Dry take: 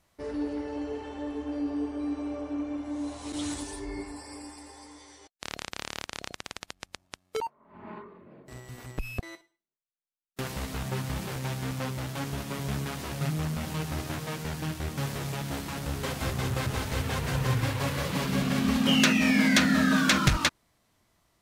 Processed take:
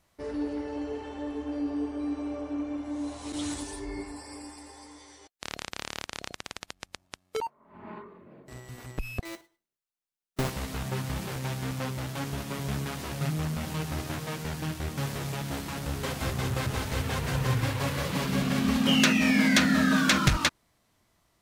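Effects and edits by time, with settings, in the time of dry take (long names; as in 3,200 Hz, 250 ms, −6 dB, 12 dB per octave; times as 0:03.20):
0:09.25–0:10.50: each half-wave held at its own peak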